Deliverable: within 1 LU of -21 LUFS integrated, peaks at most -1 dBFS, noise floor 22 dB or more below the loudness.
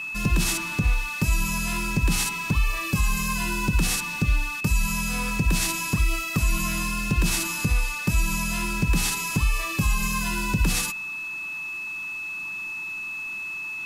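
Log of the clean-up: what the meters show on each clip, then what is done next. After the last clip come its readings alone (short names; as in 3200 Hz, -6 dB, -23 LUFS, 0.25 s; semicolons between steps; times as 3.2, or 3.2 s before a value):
steady tone 2600 Hz; tone level -30 dBFS; loudness -25.0 LUFS; peak -11.0 dBFS; loudness target -21.0 LUFS
-> notch 2600 Hz, Q 30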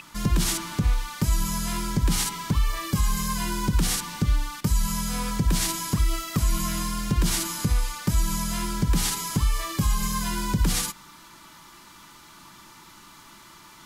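steady tone none; loudness -26.0 LUFS; peak -12.0 dBFS; loudness target -21.0 LUFS
-> gain +5 dB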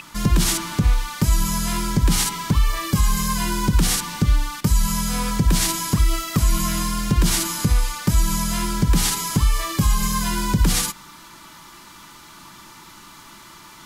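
loudness -21.0 LUFS; peak -7.0 dBFS; noise floor -44 dBFS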